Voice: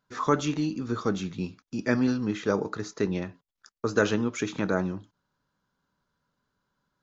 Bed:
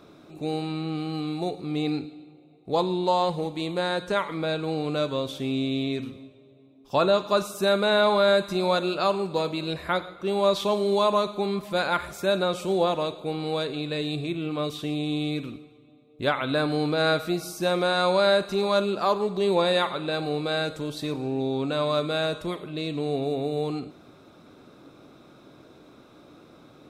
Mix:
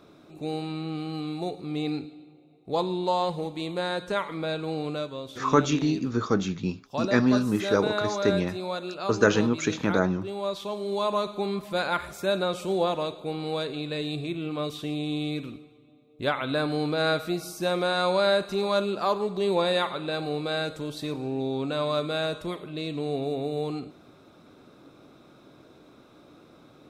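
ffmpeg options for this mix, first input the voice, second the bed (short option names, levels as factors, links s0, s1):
-filter_complex "[0:a]adelay=5250,volume=1.41[s0];[1:a]volume=1.58,afade=t=out:st=4.86:d=0.24:silence=0.501187,afade=t=in:st=10.75:d=0.62:silence=0.473151[s1];[s0][s1]amix=inputs=2:normalize=0"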